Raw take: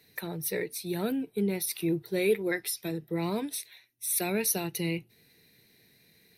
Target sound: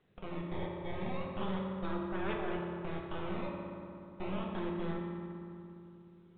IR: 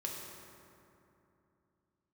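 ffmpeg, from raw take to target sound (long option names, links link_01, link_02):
-filter_complex "[0:a]lowpass=frequency=1400:width=0.5412,lowpass=frequency=1400:width=1.3066,asplit=2[link_01][link_02];[link_02]acompressor=threshold=-42dB:ratio=6,volume=2dB[link_03];[link_01][link_03]amix=inputs=2:normalize=0,acrusher=samples=18:mix=1:aa=0.000001:lfo=1:lforange=28.8:lforate=0.33,aeval=exprs='0.178*(cos(1*acos(clip(val(0)/0.178,-1,1)))-cos(1*PI/2))+0.0501*(cos(3*acos(clip(val(0)/0.178,-1,1)))-cos(3*PI/2))+0.02*(cos(4*acos(clip(val(0)/0.178,-1,1)))-cos(4*PI/2))+0.00355*(cos(5*acos(clip(val(0)/0.178,-1,1)))-cos(5*PI/2))+0.0562*(cos(6*acos(clip(val(0)/0.178,-1,1)))-cos(6*PI/2))':channel_layout=same,asoftclip=type=tanh:threshold=-30.5dB,tremolo=f=79:d=0.261[link_04];[1:a]atrim=start_sample=2205[link_05];[link_04][link_05]afir=irnorm=-1:irlink=0,volume=1dB" -ar 8000 -c:a pcm_mulaw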